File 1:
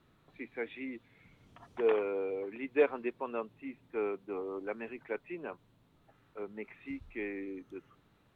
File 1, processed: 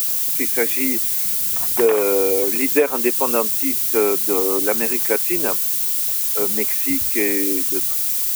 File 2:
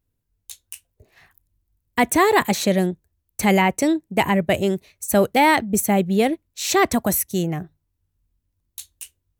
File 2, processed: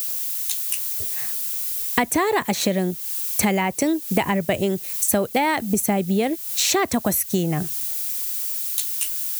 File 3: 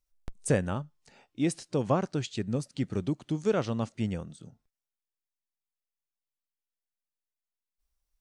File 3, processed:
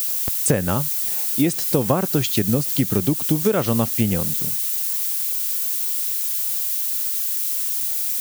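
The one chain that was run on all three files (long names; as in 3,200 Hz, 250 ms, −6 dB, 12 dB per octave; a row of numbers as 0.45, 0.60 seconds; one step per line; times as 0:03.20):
background noise violet −38 dBFS
high-pass filter 67 Hz
downward compressor 12 to 1, threshold −29 dBFS
normalise the peak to −3 dBFS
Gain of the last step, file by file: +17.5, +11.5, +14.5 decibels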